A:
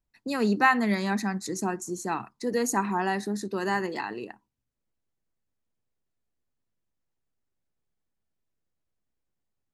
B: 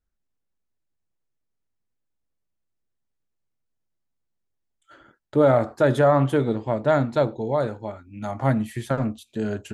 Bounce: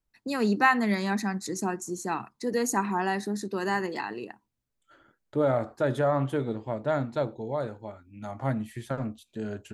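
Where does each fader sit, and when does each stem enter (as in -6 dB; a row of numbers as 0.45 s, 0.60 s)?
-0.5 dB, -7.5 dB; 0.00 s, 0.00 s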